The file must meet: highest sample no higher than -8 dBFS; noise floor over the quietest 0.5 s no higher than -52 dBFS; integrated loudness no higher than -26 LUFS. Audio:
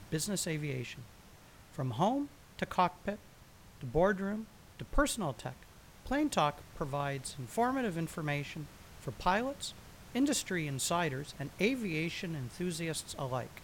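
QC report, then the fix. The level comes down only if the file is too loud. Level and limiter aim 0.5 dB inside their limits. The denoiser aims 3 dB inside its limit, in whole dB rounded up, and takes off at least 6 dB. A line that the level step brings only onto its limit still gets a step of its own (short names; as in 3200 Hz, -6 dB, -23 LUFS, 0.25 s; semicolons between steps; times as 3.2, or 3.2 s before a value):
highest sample -15.0 dBFS: OK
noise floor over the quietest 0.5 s -56 dBFS: OK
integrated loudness -35.0 LUFS: OK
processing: none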